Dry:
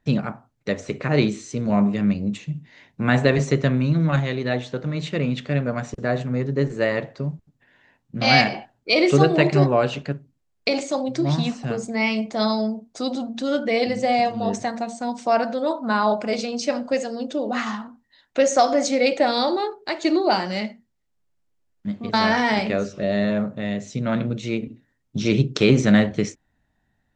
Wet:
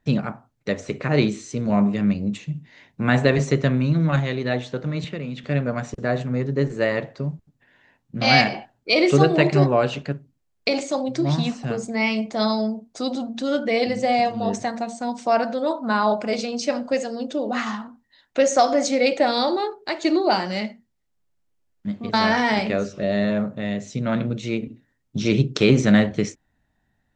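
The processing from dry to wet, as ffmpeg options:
ffmpeg -i in.wav -filter_complex "[0:a]asettb=1/sr,asplit=3[link_01][link_02][link_03];[link_01]atrim=end=5.044[link_04];[link_02]atrim=start=5.04:end=5.44,asetpts=PTS-STARTPTS,afade=type=in:duration=0.004:curve=qsin,afade=type=out:start_time=0.396:duration=0.004:curve=qsin,acrossover=split=140|3400[link_05][link_06][link_07];[link_05]acompressor=threshold=-39dB:ratio=4[link_08];[link_06]acompressor=threshold=-30dB:ratio=4[link_09];[link_07]acompressor=threshold=-50dB:ratio=4[link_10];[link_08][link_09][link_10]amix=inputs=3:normalize=0[link_11];[link_03]atrim=start=5.436[link_12];[link_04][link_11]acrossfade=duration=0.004:curve1=hsin:curve2=qsin[link_13];[link_13][link_12]acrossfade=duration=0.004:curve1=qsin:curve2=hsin" out.wav

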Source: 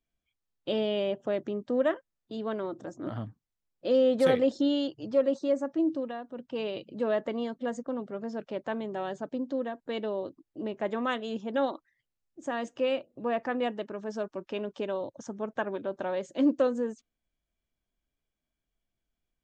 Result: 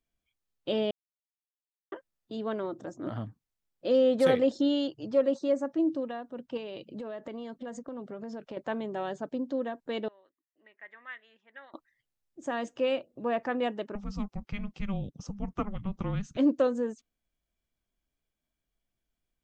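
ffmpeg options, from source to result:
ffmpeg -i in.wav -filter_complex "[0:a]asettb=1/sr,asplit=3[link_01][link_02][link_03];[link_01]atrim=end=6.574[link_04];[link_02]atrim=start=6.57:end=8.57,asetpts=PTS-STARTPTS,afade=type=in:duration=0.004:curve=qsin,afade=type=out:start_time=1.996:duration=0.004:curve=qsin,acompressor=threshold=-35dB:ratio=12:attack=3.2:release=140:knee=1:detection=peak[link_05];[link_03]atrim=start=8.566[link_06];[link_04][link_05]acrossfade=duration=0.004:curve1=hsin:curve2=qsin[link_07];[link_07][link_06]acrossfade=duration=0.004:curve1=qsin:curve2=hsin,asettb=1/sr,asplit=3[link_08][link_09][link_10];[link_08]atrim=end=10.084[link_11];[link_09]atrim=start=10.08:end=11.74,asetpts=PTS-STARTPTS,afade=type=in:duration=0.004:curve=qsin,afade=type=out:start_time=1.656:duration=0.004:curve=qsin,bandpass=frequency=1900:width_type=q:width=7.6[link_12];[link_10]atrim=start=11.736[link_13];[link_11][link_12]acrossfade=duration=0.004:curve1=hsin:curve2=qsin[link_14];[link_14][link_13]acrossfade=duration=0.004:curve1=qsin:curve2=hsin,asettb=1/sr,asplit=3[link_15][link_16][link_17];[link_15]atrim=end=13.954[link_18];[link_16]atrim=start=13.95:end=16.37,asetpts=PTS-STARTPTS,afade=type=in:duration=0.004:curve=qsin,afade=type=out:start_time=2.416:duration=0.004:curve=qsin,afreqshift=-400[link_19];[link_17]atrim=start=16.366[link_20];[link_18][link_19]acrossfade=duration=0.004:curve1=hsin:curve2=qsin[link_21];[link_21][link_20]acrossfade=duration=0.004:curve1=qsin:curve2=hsin,asplit=3[link_22][link_23][link_24];[link_22]atrim=end=0.91,asetpts=PTS-STARTPTS,afade=type=out:start_time=0.906:duration=0.004:curve=hsin[link_25];[link_23]atrim=start=0.91:end=1.92,asetpts=PTS-STARTPTS,volume=0[link_26];[link_24]atrim=start=1.92,asetpts=PTS-STARTPTS,afade=type=in:duration=0.004:curve=hsin[link_27];[link_25][link_26][link_27]concat=n=3:v=0:a=1" out.wav

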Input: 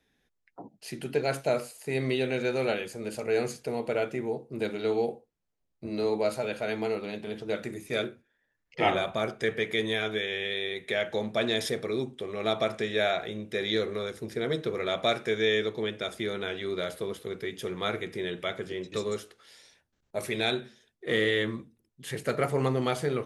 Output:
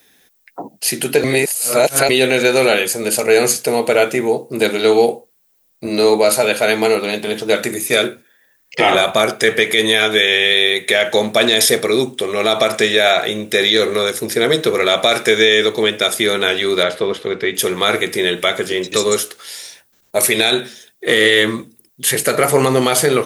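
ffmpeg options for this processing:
ffmpeg -i in.wav -filter_complex "[0:a]asettb=1/sr,asplit=3[link_01][link_02][link_03];[link_01]atrim=end=16.834[link_04];[link_02]atrim=start=16.83:end=17.55,asetpts=PTS-STARTPTS,afade=type=in:duration=0.004:curve=qsin,afade=type=out:start_time=0.716:duration=0.004:curve=qsin,lowpass=3300[link_05];[link_03]atrim=start=17.546[link_06];[link_04][link_05]acrossfade=duration=0.004:curve1=hsin:curve2=qsin[link_07];[link_07][link_06]acrossfade=duration=0.004:curve1=qsin:curve2=hsin,asplit=3[link_08][link_09][link_10];[link_08]atrim=end=1.242[link_11];[link_09]atrim=start=1.238:end=2.092,asetpts=PTS-STARTPTS,areverse[link_12];[link_10]atrim=start=2.088[link_13];[link_11][link_12]acrossfade=duration=0.004:curve1=hsin:curve2=hsin[link_14];[link_14][link_13]acrossfade=duration=0.004:curve1=hsin:curve2=hsin,aemphasis=mode=production:type=bsi,alimiter=level_in=18.5dB:limit=-1dB:release=50:level=0:latency=1,volume=-1dB" out.wav

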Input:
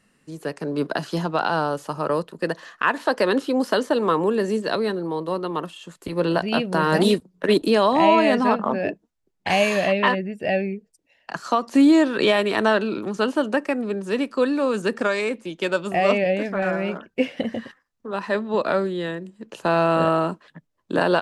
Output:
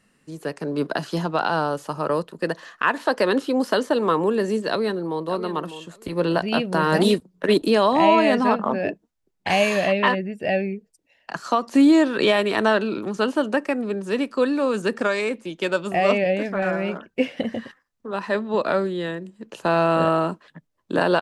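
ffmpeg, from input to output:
ffmpeg -i in.wav -filter_complex "[0:a]asplit=2[link_01][link_02];[link_02]afade=type=in:start_time=4.69:duration=0.01,afade=type=out:start_time=5.26:duration=0.01,aecho=0:1:600|1200:0.251189|0.0376783[link_03];[link_01][link_03]amix=inputs=2:normalize=0" out.wav

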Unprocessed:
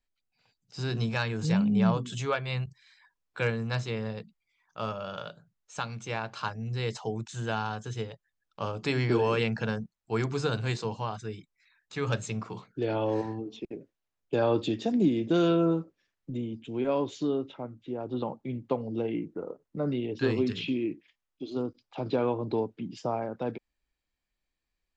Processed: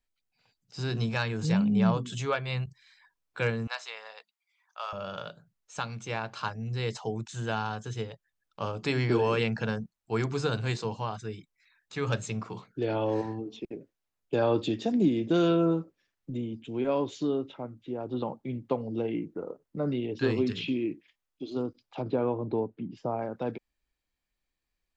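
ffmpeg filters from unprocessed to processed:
ffmpeg -i in.wav -filter_complex "[0:a]asettb=1/sr,asplit=3[link_01][link_02][link_03];[link_01]atrim=end=3.674[link_04];[link_02]atrim=start=3.67:end=4.93,asetpts=PTS-STARTPTS,afade=type=in:duration=0.004:curve=qsin,afade=type=out:start_time=1.256:duration=0.004:curve=qsin,highpass=frequency=720:width=0.5412,highpass=frequency=720:width=1.3066[link_05];[link_03]atrim=start=4.926[link_06];[link_04][link_05]acrossfade=duration=0.004:curve1=hsin:curve2=qsin[link_07];[link_07][link_06]acrossfade=duration=0.004:curve1=qsin:curve2=hsin,asettb=1/sr,asplit=3[link_08][link_09][link_10];[link_08]atrim=end=22.024[link_11];[link_09]atrim=start=22.02:end=23.19,asetpts=PTS-STARTPTS,afade=type=in:duration=0.004:curve=qsin,afade=type=out:start_time=1.166:duration=0.004:curve=qsin,lowpass=frequency=1200:poles=1[link_12];[link_10]atrim=start=23.186[link_13];[link_11][link_12]acrossfade=duration=0.004:curve1=hsin:curve2=qsin[link_14];[link_14][link_13]acrossfade=duration=0.004:curve1=qsin:curve2=hsin" out.wav

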